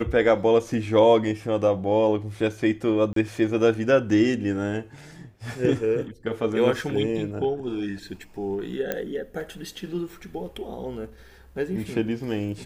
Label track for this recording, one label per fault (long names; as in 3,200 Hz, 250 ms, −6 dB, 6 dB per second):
3.130000	3.160000	drop-out 33 ms
8.920000	8.920000	click −12 dBFS